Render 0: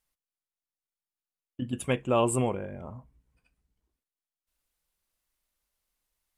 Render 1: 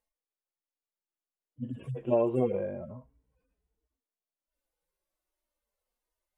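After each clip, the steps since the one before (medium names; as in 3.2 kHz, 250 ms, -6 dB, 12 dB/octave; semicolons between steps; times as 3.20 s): harmonic-percussive separation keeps harmonic; peaking EQ 480 Hz +13 dB 2.3 oct; compression, threshold -16 dBFS, peak gain reduction 7 dB; trim -5.5 dB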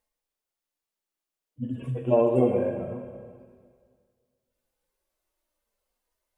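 reverberation RT60 1.9 s, pre-delay 18 ms, DRR 5 dB; trim +4.5 dB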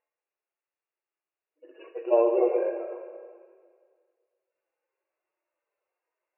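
brick-wall FIR band-pass 310–2900 Hz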